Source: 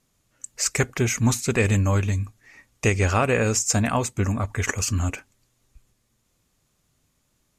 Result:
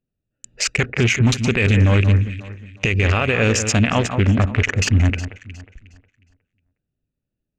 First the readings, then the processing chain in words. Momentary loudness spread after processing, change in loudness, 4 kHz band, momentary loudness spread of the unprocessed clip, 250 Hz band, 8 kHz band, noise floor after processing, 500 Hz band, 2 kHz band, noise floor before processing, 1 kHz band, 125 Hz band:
9 LU, +5.0 dB, +7.5 dB, 8 LU, +5.5 dB, −1.0 dB, −81 dBFS, +3.0 dB, +7.0 dB, −70 dBFS, +1.5 dB, +7.0 dB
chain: adaptive Wiener filter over 41 samples
noise gate −59 dBFS, range −19 dB
drawn EQ curve 570 Hz 0 dB, 1,000 Hz −2 dB, 2,900 Hz +11 dB, 11,000 Hz −16 dB
on a send: delay that swaps between a low-pass and a high-pass 181 ms, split 1,900 Hz, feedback 53%, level −12 dB
on the sum: boost into a limiter +16 dB
level −6.5 dB

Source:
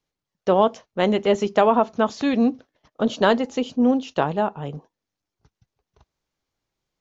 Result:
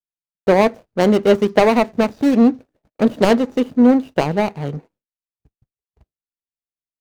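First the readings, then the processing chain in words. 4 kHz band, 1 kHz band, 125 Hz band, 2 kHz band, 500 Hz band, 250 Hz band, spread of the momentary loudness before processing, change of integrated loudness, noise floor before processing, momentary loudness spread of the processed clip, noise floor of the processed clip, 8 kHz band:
+2.0 dB, +1.0 dB, +6.5 dB, +4.5 dB, +4.5 dB, +6.5 dB, 8 LU, +5.0 dB, below −85 dBFS, 9 LU, below −85 dBFS, can't be measured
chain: running median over 41 samples
downward expander −53 dBFS
level +7 dB

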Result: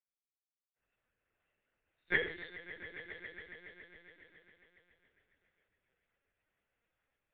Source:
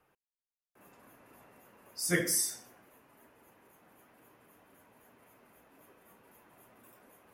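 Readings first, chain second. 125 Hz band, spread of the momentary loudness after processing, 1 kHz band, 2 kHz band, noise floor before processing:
−13.0 dB, 22 LU, −4.5 dB, +2.5 dB, below −85 dBFS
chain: high-pass filter 270 Hz 12 dB per octave
flat-topped bell 870 Hz −9 dB 1.2 octaves
mains-hum notches 50/100/150/200/250/300/350/400/450 Hz
echo that builds up and dies away 138 ms, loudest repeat 5, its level −12.5 dB
linear-prediction vocoder at 8 kHz pitch kept
low-shelf EQ 450 Hz −11 dB
multiband upward and downward expander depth 70%
level −3.5 dB

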